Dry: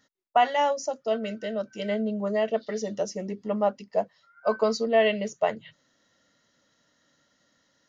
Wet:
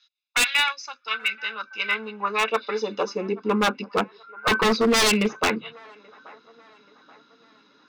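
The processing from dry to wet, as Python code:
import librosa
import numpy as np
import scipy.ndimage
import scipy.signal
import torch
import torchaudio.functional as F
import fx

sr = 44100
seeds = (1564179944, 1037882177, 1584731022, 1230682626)

p1 = fx.self_delay(x, sr, depth_ms=0.14)
p2 = scipy.signal.sosfilt(scipy.signal.butter(4, 4300.0, 'lowpass', fs=sr, output='sos'), p1)
p3 = p2 + 0.96 * np.pad(p2, (int(0.8 * sr / 1000.0), 0))[:len(p2)]
p4 = fx.dynamic_eq(p3, sr, hz=2100.0, q=2.0, threshold_db=-46.0, ratio=4.0, max_db=8)
p5 = fx.filter_sweep_highpass(p4, sr, from_hz=3300.0, to_hz=290.0, start_s=0.08, end_s=3.88, q=1.2)
p6 = 10.0 ** (-22.5 / 20.0) * (np.abs((p5 / 10.0 ** (-22.5 / 20.0) + 3.0) % 4.0 - 2.0) - 1.0)
p7 = p6 + fx.echo_wet_bandpass(p6, sr, ms=831, feedback_pct=43, hz=930.0, wet_db=-21.5, dry=0)
y = p7 * 10.0 ** (9.0 / 20.0)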